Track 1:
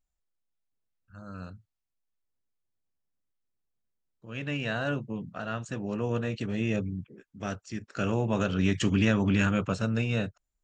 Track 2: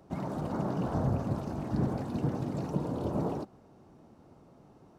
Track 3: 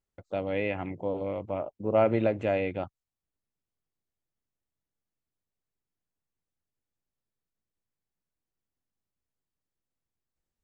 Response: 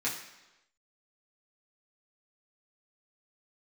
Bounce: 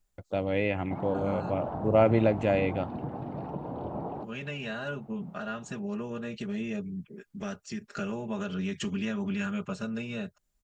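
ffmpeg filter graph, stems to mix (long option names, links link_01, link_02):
-filter_complex "[0:a]acompressor=threshold=-41dB:ratio=2.5,aecho=1:1:4.9:0.79,volume=3dB[link_01];[1:a]lowpass=frequency=3300:width=0.5412,lowpass=frequency=3300:width=1.3066,equalizer=frequency=790:width_type=o:width=0.77:gain=8.5,acompressor=threshold=-31dB:ratio=3,adelay=800,volume=-2dB[link_02];[2:a]bass=frequency=250:gain=4,treble=frequency=4000:gain=6,volume=1dB[link_03];[link_01][link_02][link_03]amix=inputs=3:normalize=0"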